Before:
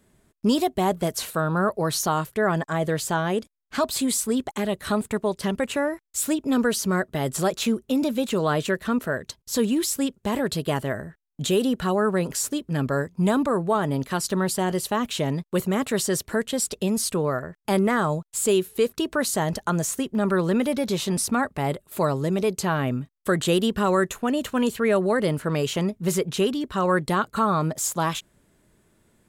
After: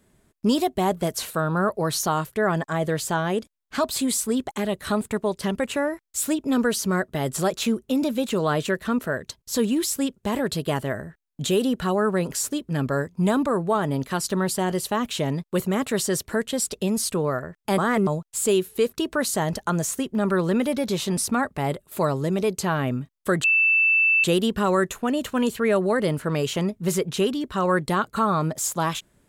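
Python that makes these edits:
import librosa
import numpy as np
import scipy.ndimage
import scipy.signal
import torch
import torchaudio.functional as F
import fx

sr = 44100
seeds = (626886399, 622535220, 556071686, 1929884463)

y = fx.edit(x, sr, fx.reverse_span(start_s=17.78, length_s=0.29),
    fx.insert_tone(at_s=23.44, length_s=0.8, hz=2650.0, db=-15.5), tone=tone)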